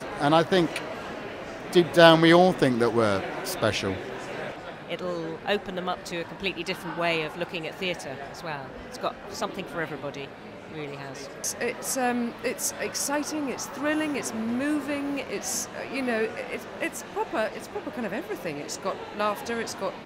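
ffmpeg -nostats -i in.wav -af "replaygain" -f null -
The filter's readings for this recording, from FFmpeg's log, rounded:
track_gain = +6.6 dB
track_peak = 0.615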